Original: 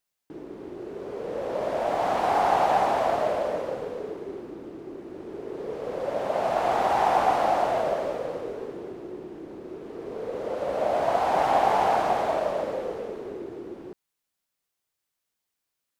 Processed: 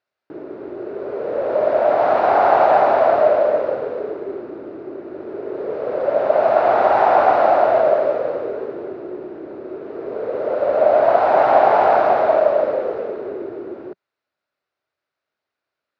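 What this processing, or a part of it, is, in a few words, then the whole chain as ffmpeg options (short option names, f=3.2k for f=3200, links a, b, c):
guitar cabinet: -af "highpass=91,equalizer=f=180:t=q:w=4:g=-7,equalizer=f=390:t=q:w=4:g=4,equalizer=f=610:t=q:w=4:g=9,equalizer=f=1.4k:t=q:w=4:g=7,equalizer=f=3.2k:t=q:w=4:g=-7,lowpass=f=4.1k:w=0.5412,lowpass=f=4.1k:w=1.3066,volume=4.5dB"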